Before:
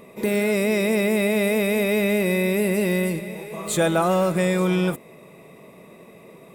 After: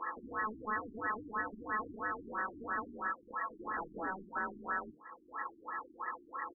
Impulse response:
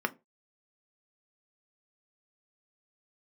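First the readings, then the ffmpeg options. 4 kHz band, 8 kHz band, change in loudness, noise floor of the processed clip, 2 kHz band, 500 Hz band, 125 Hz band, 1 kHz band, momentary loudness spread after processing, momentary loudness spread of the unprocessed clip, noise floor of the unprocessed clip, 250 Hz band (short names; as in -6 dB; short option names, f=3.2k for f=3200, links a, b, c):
under -40 dB, under -40 dB, -18.0 dB, -62 dBFS, -11.5 dB, -26.0 dB, -32.0 dB, -6.0 dB, 6 LU, 6 LU, -47 dBFS, -25.0 dB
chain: -filter_complex "[0:a]aecho=1:1:5:0.55,adynamicsmooth=sensitivity=7:basefreq=1.7k,lowpass=f=4k:p=1,aeval=exprs='val(0)*sin(2*PI*1500*n/s)':c=same,acompressor=threshold=-42dB:ratio=6,bandreject=f=156.4:t=h:w=4,bandreject=f=312.8:t=h:w=4,bandreject=f=469.2:t=h:w=4,bandreject=f=625.6:t=h:w=4,bandreject=f=782:t=h:w=4,bandreject=f=938.4:t=h:w=4,bandreject=f=1.0948k:t=h:w=4,bandreject=f=1.2512k:t=h:w=4,bandreject=f=1.4076k:t=h:w=4,bandreject=f=1.564k:t=h:w=4,bandreject=f=1.7204k:t=h:w=4,bandreject=f=1.8768k:t=h:w=4,bandreject=f=2.0332k:t=h:w=4,bandreject=f=2.1896k:t=h:w=4,bandreject=f=2.346k:t=h:w=4,bandreject=f=2.5024k:t=h:w=4,bandreject=f=2.6588k:t=h:w=4,bandreject=f=2.8152k:t=h:w=4,bandreject=f=2.9716k:t=h:w=4,bandreject=f=3.128k:t=h:w=4,bandreject=f=3.2844k:t=h:w=4,bandreject=f=3.4408k:t=h:w=4,bandreject=f=3.5972k:t=h:w=4,bandreject=f=3.7536k:t=h:w=4,bandreject=f=3.91k:t=h:w=4,bandreject=f=4.0664k:t=h:w=4,bandreject=f=4.2228k:t=h:w=4,bandreject=f=4.3792k:t=h:w=4,bandreject=f=4.5356k:t=h:w=4,bandreject=f=4.692k:t=h:w=4,bandreject=f=4.8484k:t=h:w=4,bandreject=f=5.0048k:t=h:w=4,bandreject=f=5.1612k:t=h:w=4,bandreject=f=5.3176k:t=h:w=4,bandreject=f=5.474k:t=h:w=4,bandreject=f=5.6304k:t=h:w=4,bandreject=f=5.7868k:t=h:w=4,aeval=exprs='(mod(56.2*val(0)+1,2)-1)/56.2':c=same,equalizer=f=630:t=o:w=0.36:g=-3,acrusher=bits=3:mode=log:mix=0:aa=0.000001,asplit=2[a][b];[1:a]atrim=start_sample=2205[c];[b][c]afir=irnorm=-1:irlink=0,volume=-2.5dB[d];[a][d]amix=inputs=2:normalize=0,afftfilt=real='re*lt(b*sr/1024,380*pow(2000/380,0.5+0.5*sin(2*PI*3*pts/sr)))':imag='im*lt(b*sr/1024,380*pow(2000/380,0.5+0.5*sin(2*PI*3*pts/sr)))':win_size=1024:overlap=0.75,volume=1.5dB"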